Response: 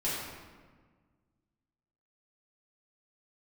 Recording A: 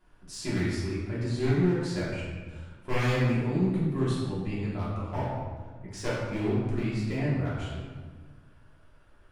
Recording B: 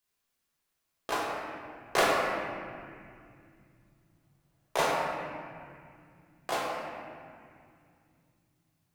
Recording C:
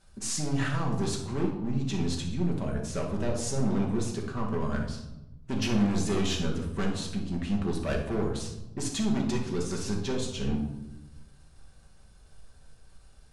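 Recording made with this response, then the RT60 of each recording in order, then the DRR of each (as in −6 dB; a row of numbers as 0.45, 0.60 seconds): A; 1.5, 2.3, 0.95 seconds; −9.5, −4.5, −1.0 decibels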